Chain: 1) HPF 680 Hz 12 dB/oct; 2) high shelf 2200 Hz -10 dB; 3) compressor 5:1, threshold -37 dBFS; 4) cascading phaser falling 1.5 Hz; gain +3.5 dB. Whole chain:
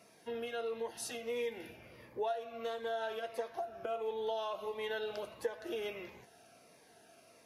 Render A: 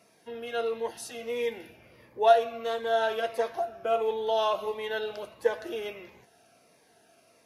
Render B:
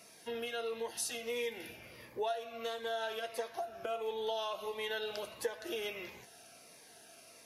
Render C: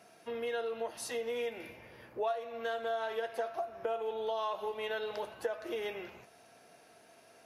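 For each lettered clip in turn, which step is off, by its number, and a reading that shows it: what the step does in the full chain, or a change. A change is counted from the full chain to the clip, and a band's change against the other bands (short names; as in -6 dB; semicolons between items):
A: 3, mean gain reduction 6.5 dB; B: 2, 8 kHz band +6.0 dB; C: 4, loudness change +2.5 LU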